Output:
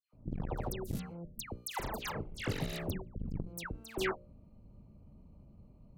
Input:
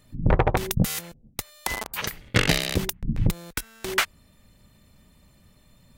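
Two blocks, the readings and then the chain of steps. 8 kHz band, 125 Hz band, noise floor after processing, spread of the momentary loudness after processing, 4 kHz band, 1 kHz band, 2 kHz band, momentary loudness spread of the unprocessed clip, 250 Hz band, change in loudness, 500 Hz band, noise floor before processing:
−15.5 dB, −14.0 dB, −60 dBFS, 22 LU, −16.0 dB, −12.5 dB, −15.0 dB, 11 LU, −11.5 dB, −13.5 dB, −10.5 dB, −58 dBFS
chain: adaptive Wiener filter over 25 samples
tilt shelving filter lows +5 dB
mains-hum notches 60/120/180/240/300/360/420/480/540/600 Hz
downward compressor 6 to 1, threshold −27 dBFS, peak gain reduction 15.5 dB
harmonic generator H 4 −22 dB, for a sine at −12.5 dBFS
all-pass dispersion lows, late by 134 ms, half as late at 1,900 Hz
saturating transformer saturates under 280 Hz
level −3 dB

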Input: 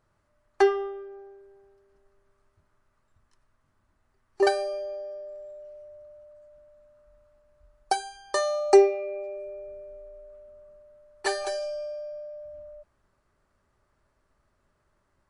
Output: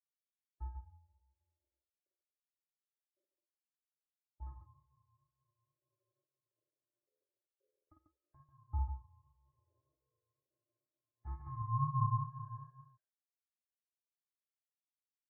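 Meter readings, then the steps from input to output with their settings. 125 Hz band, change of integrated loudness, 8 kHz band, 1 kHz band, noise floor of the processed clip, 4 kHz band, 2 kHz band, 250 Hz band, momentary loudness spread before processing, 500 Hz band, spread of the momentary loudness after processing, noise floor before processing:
can't be measured, −13.0 dB, below −35 dB, −12.0 dB, below −85 dBFS, below −40 dB, below −40 dB, −17.5 dB, 23 LU, below −40 dB, 19 LU, −72 dBFS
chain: hearing-aid frequency compression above 1,100 Hz 4 to 1
noise gate with hold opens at −54 dBFS
low-pass filter sweep 160 Hz → 1,200 Hz, 0:10.90–0:12.48
tape wow and flutter 58 cents
high-pass filter 71 Hz 12 dB per octave
on a send: loudspeakers that aren't time-aligned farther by 17 metres −5 dB, 49 metres −6 dB
on the sum: dynamic equaliser 1,200 Hz, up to +7 dB, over −51 dBFS, Q 1.7
ring modulation 470 Hz
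parametric band 870 Hz −10 dB 0.34 octaves
every bin expanded away from the loudest bin 1.5 to 1
level −1 dB

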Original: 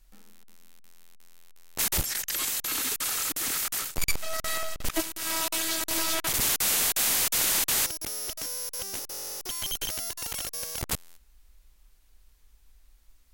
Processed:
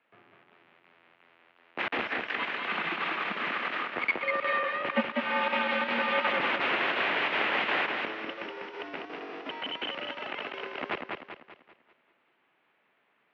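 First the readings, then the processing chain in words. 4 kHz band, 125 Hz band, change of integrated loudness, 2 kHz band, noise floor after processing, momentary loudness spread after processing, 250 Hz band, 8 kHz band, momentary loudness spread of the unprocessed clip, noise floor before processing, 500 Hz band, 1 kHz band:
−4.5 dB, −9.5 dB, −3.0 dB, +7.0 dB, −71 dBFS, 13 LU, +3.0 dB, below −40 dB, 10 LU, −58 dBFS, +6.5 dB, +7.5 dB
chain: single-sideband voice off tune −95 Hz 350–2,800 Hz
feedback echo with a swinging delay time 195 ms, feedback 44%, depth 75 cents, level −4 dB
level +5.5 dB

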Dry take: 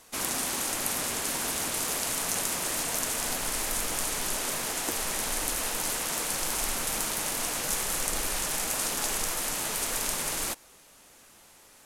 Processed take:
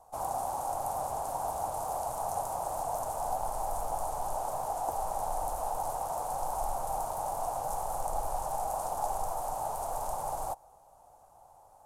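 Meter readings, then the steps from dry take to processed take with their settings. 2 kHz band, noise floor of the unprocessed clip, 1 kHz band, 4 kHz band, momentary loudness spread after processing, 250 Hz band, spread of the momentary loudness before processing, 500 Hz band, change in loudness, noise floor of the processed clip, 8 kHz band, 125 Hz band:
−20.5 dB, −56 dBFS, +6.0 dB, −22.5 dB, 1 LU, −12.5 dB, 1 LU, +2.0 dB, −6.0 dB, −58 dBFS, −15.0 dB, −2.5 dB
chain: drawn EQ curve 120 Hz 0 dB, 220 Hz −15 dB, 400 Hz −11 dB, 780 Hz +12 dB, 1,900 Hz −26 dB, 3,400 Hz −25 dB, 4,900 Hz −21 dB, 8,400 Hz −14 dB

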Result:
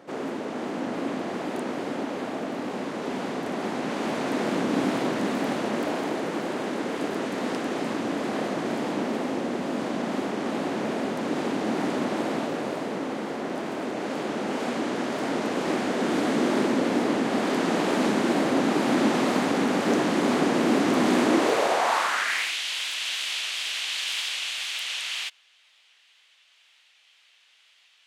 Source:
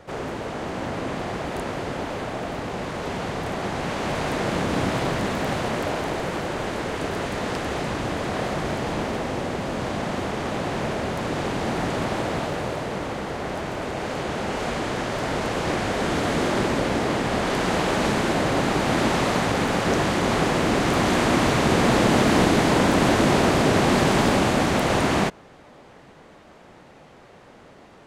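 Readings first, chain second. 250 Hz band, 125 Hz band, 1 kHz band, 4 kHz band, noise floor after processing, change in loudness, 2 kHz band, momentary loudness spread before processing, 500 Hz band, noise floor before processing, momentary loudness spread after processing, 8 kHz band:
−1.0 dB, −11.5 dB, −4.5 dB, −1.0 dB, −60 dBFS, −3.0 dB, −3.5 dB, 11 LU, −3.0 dB, −48 dBFS, 9 LU, −3.5 dB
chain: tape wow and flutter 72 cents
high-pass filter sweep 250 Hz → 3,000 Hz, 0:21.22–0:22.59
level −4 dB

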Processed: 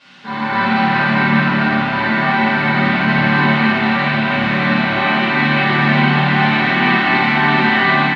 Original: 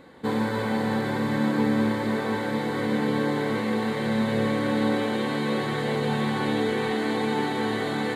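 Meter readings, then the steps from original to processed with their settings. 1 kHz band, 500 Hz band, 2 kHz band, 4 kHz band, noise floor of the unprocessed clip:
+14.5 dB, +3.0 dB, +18.0 dB, +13.0 dB, −28 dBFS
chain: parametric band 440 Hz −10.5 dB 0.49 octaves
comb filter 5 ms, depth 62%
automatic gain control gain up to 11.5 dB
background noise blue −38 dBFS
hard clipping −12.5 dBFS, distortion −13 dB
loudspeaker in its box 180–3,900 Hz, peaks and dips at 210 Hz −5 dB, 340 Hz −7 dB, 490 Hz −9 dB, 690 Hz −4 dB, 1,500 Hz +4 dB, 2,700 Hz +5 dB
on a send: flutter between parallel walls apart 9.2 metres, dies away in 0.45 s
on the sum: rectangular room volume 260 cubic metres, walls mixed, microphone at 5.2 metres
level −8.5 dB

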